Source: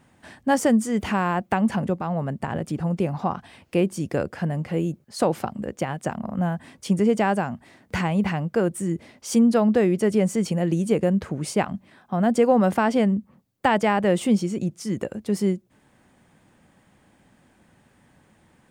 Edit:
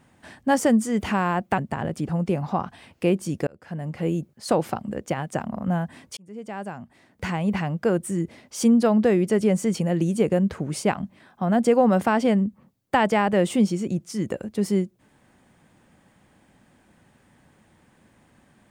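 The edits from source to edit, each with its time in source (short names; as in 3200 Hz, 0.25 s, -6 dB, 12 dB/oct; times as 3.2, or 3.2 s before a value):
1.58–2.29 cut
4.18–4.8 fade in
6.88–8.48 fade in linear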